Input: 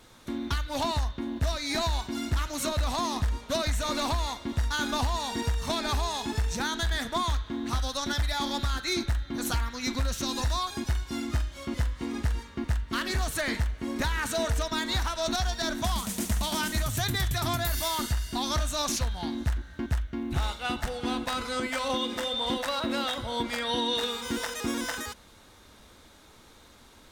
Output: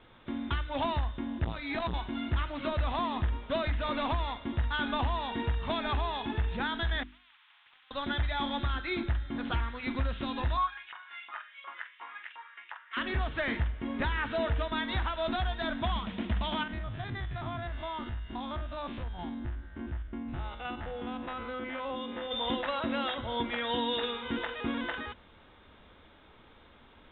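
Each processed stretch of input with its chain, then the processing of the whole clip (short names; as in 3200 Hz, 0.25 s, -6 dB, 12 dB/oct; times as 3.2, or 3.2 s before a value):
1.44–1.94 notch 580 Hz, Q 14 + core saturation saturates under 320 Hz
7.03–7.91 Bessel high-pass 2800 Hz, order 8 + compressor 2.5:1, threshold -49 dBFS + spectral compressor 10:1
10.57–12.97 HPF 560 Hz + air absorption 340 m + LFO high-pass saw up 2.8 Hz 890–2900 Hz
16.63–22.31 stepped spectrum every 50 ms + bell 13000 Hz -11.5 dB 2.3 oct + compressor 2.5:1, threshold -32 dBFS
whole clip: steep low-pass 3600 Hz 96 dB/oct; notches 50/100/150/200/250/300/350 Hz; gain -1.5 dB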